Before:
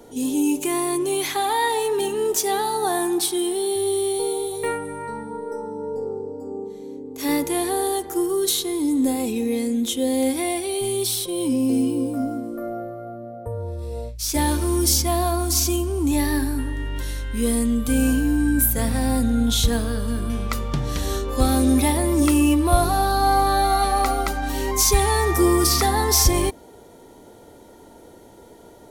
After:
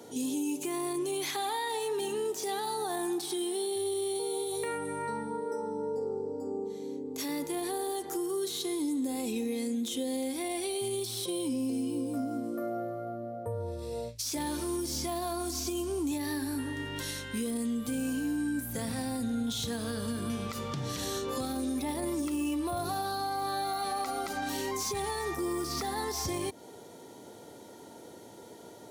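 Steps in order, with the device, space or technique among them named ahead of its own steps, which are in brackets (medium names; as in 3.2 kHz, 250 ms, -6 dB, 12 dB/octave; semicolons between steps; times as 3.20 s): broadcast voice chain (high-pass 100 Hz 24 dB/octave; de-esser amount 50%; compression 5:1, threshold -27 dBFS, peak gain reduction 11.5 dB; peaking EQ 5.2 kHz +5 dB 1.7 oct; peak limiter -21.5 dBFS, peak gain reduction 9.5 dB); trim -3 dB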